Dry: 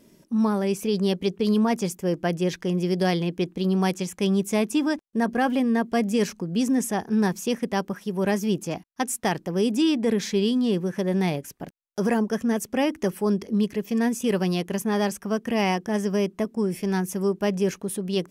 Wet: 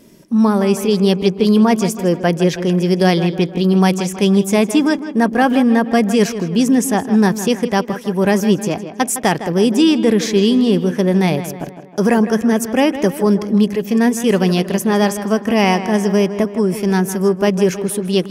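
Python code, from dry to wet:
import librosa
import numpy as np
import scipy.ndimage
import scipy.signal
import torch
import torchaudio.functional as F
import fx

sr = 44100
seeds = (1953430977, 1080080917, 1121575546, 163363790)

y = fx.echo_tape(x, sr, ms=159, feedback_pct=57, wet_db=-9.5, lp_hz=3100.0, drive_db=16.0, wow_cents=15)
y = y * 10.0 ** (9.0 / 20.0)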